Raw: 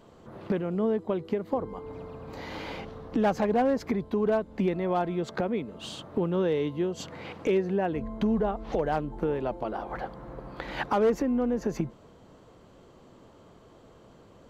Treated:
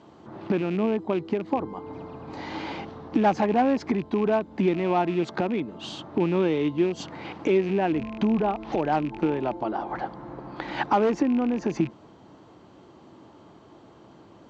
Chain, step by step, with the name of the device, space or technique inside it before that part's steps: car door speaker with a rattle (rattling part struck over -35 dBFS, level -33 dBFS; speaker cabinet 91–6600 Hz, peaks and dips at 320 Hz +7 dB, 490 Hz -6 dB, 850 Hz +5 dB); gain +2.5 dB

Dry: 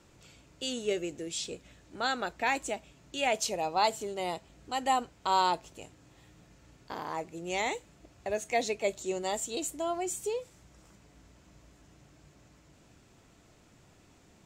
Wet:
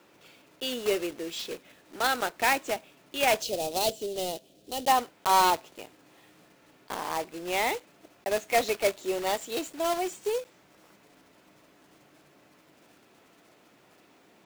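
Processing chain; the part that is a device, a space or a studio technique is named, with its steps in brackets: early digital voice recorder (BPF 280–3900 Hz; block floating point 3-bit); 3.42–4.88 band shelf 1400 Hz -15.5 dB; gain +4.5 dB

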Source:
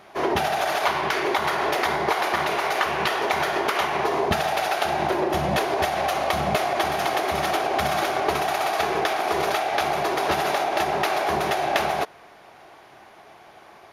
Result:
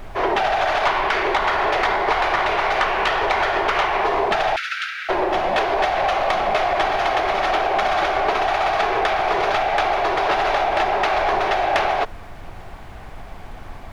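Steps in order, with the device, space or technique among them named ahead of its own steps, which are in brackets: aircraft cabin announcement (BPF 430–3500 Hz; soft clip -16 dBFS, distortion -19 dB; brown noise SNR 15 dB); 4.56–5.09 Chebyshev high-pass 1300 Hz, order 8; gain +6 dB

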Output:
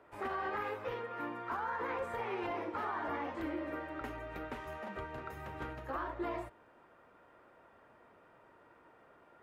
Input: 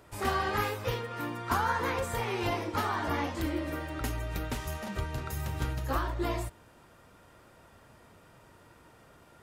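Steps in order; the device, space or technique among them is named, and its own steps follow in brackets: DJ mixer with the lows and highs turned down (three-band isolator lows -14 dB, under 260 Hz, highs -20 dB, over 2500 Hz; limiter -26.5 dBFS, peak gain reduction 9 dB); gain -2.5 dB

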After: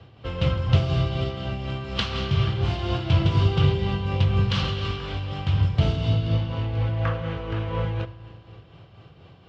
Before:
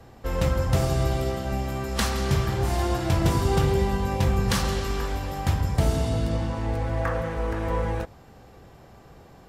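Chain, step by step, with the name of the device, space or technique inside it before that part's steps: bell 550 Hz -5 dB 2.4 oct; combo amplifier with spring reverb and tremolo (spring tank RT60 2.7 s, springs 36 ms, chirp 35 ms, DRR 16 dB; tremolo 4.1 Hz, depth 44%; speaker cabinet 89–4200 Hz, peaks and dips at 100 Hz +9 dB, 160 Hz +3 dB, 230 Hz -7 dB, 840 Hz -5 dB, 1800 Hz -7 dB, 3000 Hz +8 dB); gain +4 dB

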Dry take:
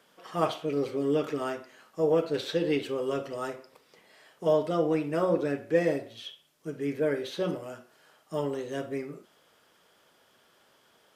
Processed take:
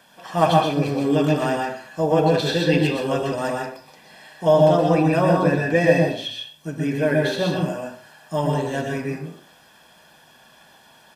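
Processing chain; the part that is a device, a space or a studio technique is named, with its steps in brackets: microphone above a desk (comb 1.2 ms, depth 63%; reverb RT60 0.40 s, pre-delay 0.116 s, DRR 0.5 dB); gain +8 dB

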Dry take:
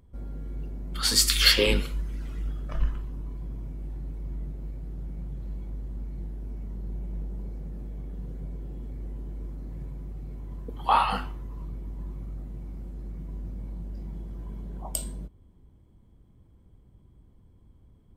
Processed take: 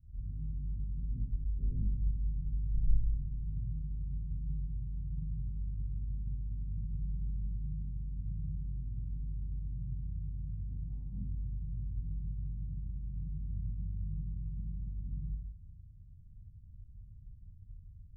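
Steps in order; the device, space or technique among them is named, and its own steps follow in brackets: club heard from the street (limiter -16.5 dBFS, peak gain reduction 11.5 dB; LPF 140 Hz 24 dB/oct; reverb RT60 0.65 s, pre-delay 16 ms, DRR -7.5 dB); gain -3 dB

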